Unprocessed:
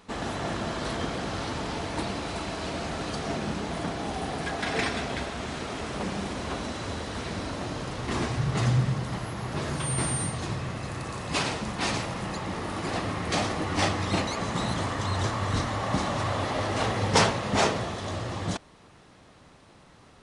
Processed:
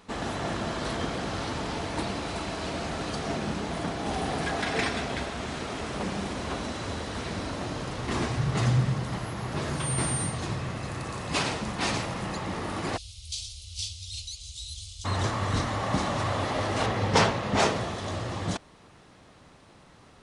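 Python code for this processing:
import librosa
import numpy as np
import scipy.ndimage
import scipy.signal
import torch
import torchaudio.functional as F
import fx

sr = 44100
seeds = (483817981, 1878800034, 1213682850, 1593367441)

y = fx.env_flatten(x, sr, amount_pct=50, at=(4.06, 4.64))
y = fx.cheby2_bandstop(y, sr, low_hz=140.0, high_hz=1900.0, order=4, stop_db=40, at=(12.96, 15.04), fade=0.02)
y = fx.high_shelf(y, sr, hz=8000.0, db=-11.0, at=(16.86, 17.6))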